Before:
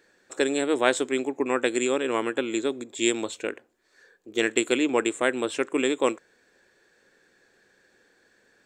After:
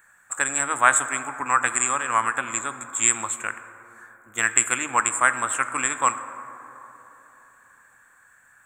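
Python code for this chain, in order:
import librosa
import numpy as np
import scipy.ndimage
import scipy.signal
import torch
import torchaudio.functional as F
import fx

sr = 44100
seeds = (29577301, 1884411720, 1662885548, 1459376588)

y = fx.curve_eq(x, sr, hz=(130.0, 410.0, 680.0, 1200.0, 2500.0, 5100.0, 7500.0), db=(0, -23, -5, 10, -3, -19, 10))
y = fx.rev_plate(y, sr, seeds[0], rt60_s=3.6, hf_ratio=0.3, predelay_ms=0, drr_db=10.5)
y = F.gain(torch.from_numpy(y), 3.5).numpy()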